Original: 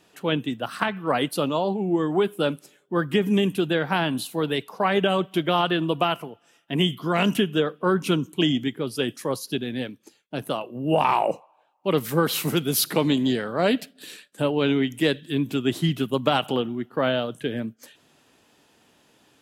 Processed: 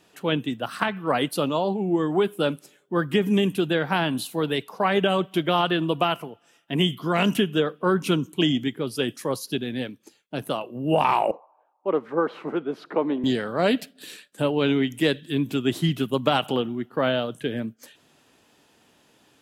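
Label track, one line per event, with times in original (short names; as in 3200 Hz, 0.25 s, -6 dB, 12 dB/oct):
11.310000	13.240000	Butterworth band-pass 650 Hz, Q 0.6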